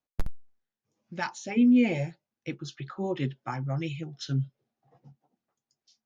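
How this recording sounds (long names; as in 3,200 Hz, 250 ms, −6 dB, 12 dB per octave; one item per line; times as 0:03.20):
background noise floor −92 dBFS
spectral slope −6.5 dB per octave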